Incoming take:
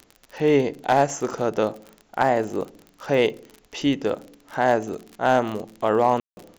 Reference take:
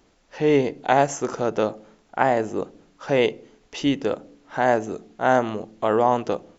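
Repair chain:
clipped peaks rebuilt −8.5 dBFS
click removal
ambience match 0:06.20–0:06.37

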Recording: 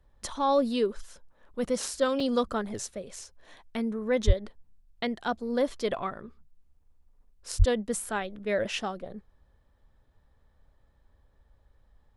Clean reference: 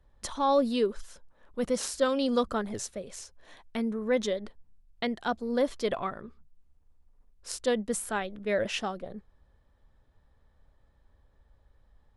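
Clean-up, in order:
high-pass at the plosives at 0:04.26/0:07.58
repair the gap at 0:02.20, 3 ms

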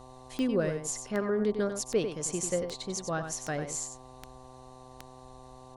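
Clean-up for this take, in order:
click removal
hum removal 128.7 Hz, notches 9
notch filter 750 Hz, Q 30
echo removal 95 ms −8 dB

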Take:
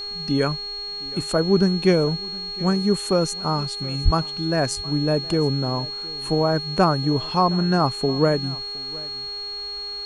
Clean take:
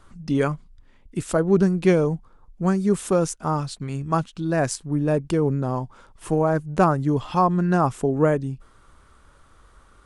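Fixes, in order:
hum removal 407.6 Hz, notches 20
notch filter 4,300 Hz, Q 30
0:04.04–0:04.16: high-pass filter 140 Hz 24 dB per octave
echo removal 716 ms −21.5 dB

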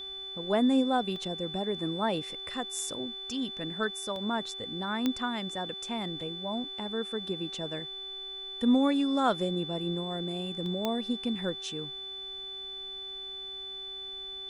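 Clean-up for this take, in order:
click removal
hum removal 386.2 Hz, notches 25
notch filter 3,500 Hz, Q 30
repair the gap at 0:01.16/0:04.16/0:06.21/0:10.66, 1.6 ms

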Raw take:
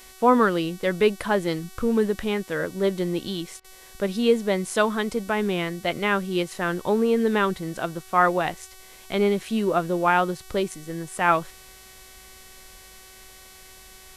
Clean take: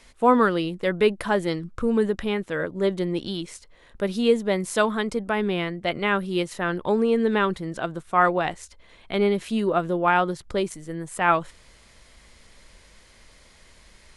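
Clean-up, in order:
hum removal 376.6 Hz, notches 36
repair the gap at 0:03.60, 42 ms

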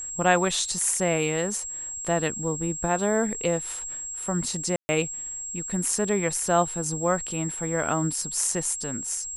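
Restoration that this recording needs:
notch filter 7,600 Hz, Q 30
ambience match 0:04.76–0:04.89

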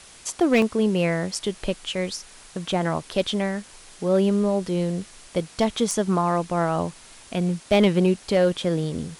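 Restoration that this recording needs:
clipped peaks rebuilt −11 dBFS
repair the gap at 0:00.62, 2.3 ms
noise reduction from a noise print 20 dB

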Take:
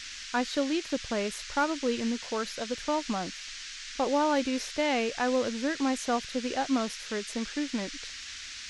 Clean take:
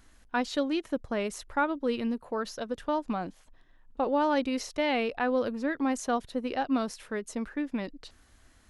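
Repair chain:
clipped peaks rebuilt −17.5 dBFS
noise reduction from a noise print 16 dB

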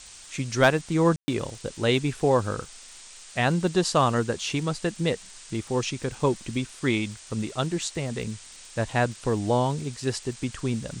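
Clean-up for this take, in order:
clipped peaks rebuilt −8.5 dBFS
click removal
ambience match 0:01.16–0:01.28
noise reduction from a noise print 24 dB

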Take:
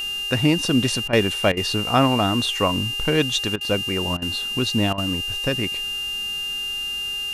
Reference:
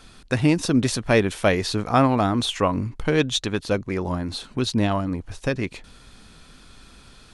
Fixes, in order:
hum removal 407.8 Hz, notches 32
notch filter 2,800 Hz, Q 30
repair the gap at 0:01.08/0:01.52/0:03.56/0:04.17/0:04.93, 48 ms

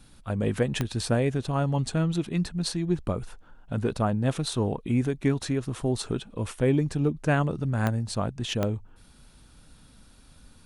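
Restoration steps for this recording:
click removal

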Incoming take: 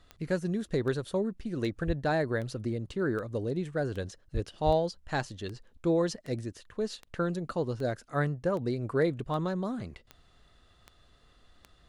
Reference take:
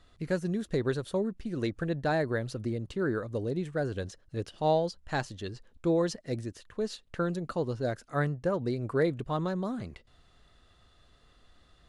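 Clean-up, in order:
click removal
0:01.86–0:01.98: high-pass filter 140 Hz 24 dB per octave
0:04.33–0:04.45: high-pass filter 140 Hz 24 dB per octave
0:04.65–0:04.77: high-pass filter 140 Hz 24 dB per octave

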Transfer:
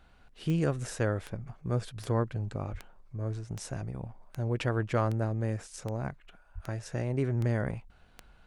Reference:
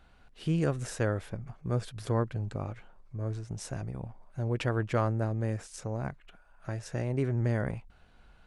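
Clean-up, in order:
click removal
high-pass at the plosives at 0:02.71/0:06.54

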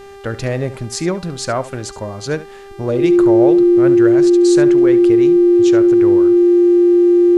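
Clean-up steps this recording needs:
hum removal 396.9 Hz, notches 34
notch filter 350 Hz, Q 30
echo removal 71 ms −15.5 dB

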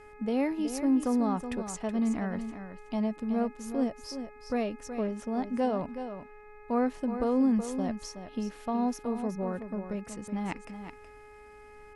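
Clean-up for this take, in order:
hum removal 420 Hz, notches 6
downward expander −43 dBFS, range −21 dB
echo removal 372 ms −9.5 dB

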